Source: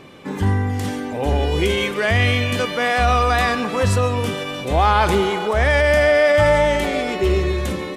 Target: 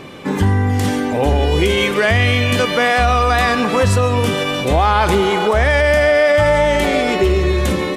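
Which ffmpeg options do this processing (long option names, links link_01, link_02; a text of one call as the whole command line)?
ffmpeg -i in.wav -af "acompressor=threshold=-20dB:ratio=3,volume=8dB" out.wav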